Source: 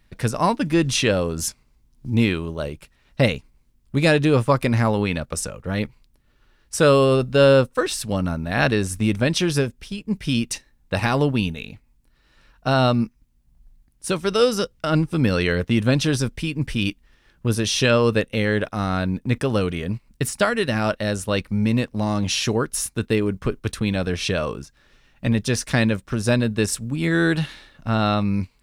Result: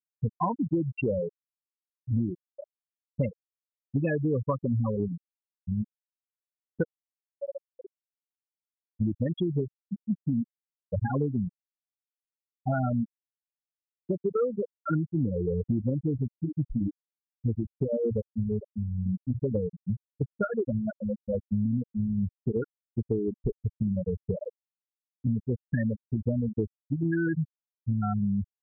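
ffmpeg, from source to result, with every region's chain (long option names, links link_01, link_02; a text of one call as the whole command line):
ffmpeg -i in.wav -filter_complex "[0:a]asettb=1/sr,asplit=3[link_01][link_02][link_03];[link_01]atrim=end=6.834[link_04];[link_02]atrim=start=6.83:end=8.96,asetpts=PTS-STARTPTS,afade=type=in:duration=0.004:curve=qsin,afade=type=out:start_time=2.126:duration=0.004:curve=qsin,acompressor=threshold=-23dB:ratio=8:attack=3.2:release=140:knee=1:detection=peak,flanger=delay=18:depth=7.1:speed=1.1[link_05];[link_03]atrim=start=8.956[link_06];[link_04][link_05]acrossfade=duration=0.004:curve1=hsin:curve2=qsin[link_07];[link_07][link_06]acrossfade=duration=0.004:curve1=qsin:curve2=hsin,asettb=1/sr,asplit=3[link_08][link_09][link_10];[link_08]atrim=end=17.844[link_11];[link_09]atrim=start=17.84:end=19.44,asetpts=PTS-STARTPTS,afade=type=in:duration=0.004:curve=qsin,afade=type=out:start_time=1.596:duration=0.004:curve=qsin,equalizer=frequency=1700:width_type=o:width=2.6:gain=-10,bandreject=frequency=60:width_type=h:width=6,bandreject=frequency=120:width_type=h:width=6,bandreject=frequency=180:width_type=h:width=6,bandreject=frequency=240:width_type=h:width=6,bandreject=frequency=300:width_type=h:width=6[link_12];[link_10]atrim=start=19.436[link_13];[link_11][link_12]acrossfade=duration=0.004:curve1=hsin:curve2=qsin[link_14];[link_14][link_13]acrossfade=duration=0.004:curve1=qsin:curve2=hsin,bandreject=frequency=630:width=12,afftfilt=real='re*gte(hypot(re,im),0.447)':imag='im*gte(hypot(re,im),0.447)':win_size=1024:overlap=0.75,acompressor=threshold=-24dB:ratio=6" out.wav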